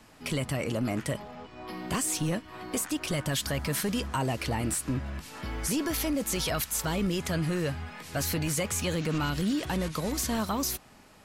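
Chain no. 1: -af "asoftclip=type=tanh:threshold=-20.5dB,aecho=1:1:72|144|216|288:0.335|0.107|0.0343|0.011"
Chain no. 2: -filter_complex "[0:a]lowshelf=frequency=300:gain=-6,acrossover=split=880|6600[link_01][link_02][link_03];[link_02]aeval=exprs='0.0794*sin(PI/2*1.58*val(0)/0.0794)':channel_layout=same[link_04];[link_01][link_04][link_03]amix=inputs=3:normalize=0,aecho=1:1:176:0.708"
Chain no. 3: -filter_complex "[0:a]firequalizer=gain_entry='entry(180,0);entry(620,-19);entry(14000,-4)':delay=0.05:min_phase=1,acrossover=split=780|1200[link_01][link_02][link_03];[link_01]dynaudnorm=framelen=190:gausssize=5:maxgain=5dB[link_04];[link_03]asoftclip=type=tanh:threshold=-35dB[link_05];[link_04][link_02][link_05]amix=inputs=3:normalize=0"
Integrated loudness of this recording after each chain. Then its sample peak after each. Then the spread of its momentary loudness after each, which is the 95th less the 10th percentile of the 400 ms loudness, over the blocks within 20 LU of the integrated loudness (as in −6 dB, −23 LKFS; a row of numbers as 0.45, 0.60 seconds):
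−30.5, −27.0, −30.0 LKFS; −20.5, −14.5, −17.0 dBFS; 8, 7, 10 LU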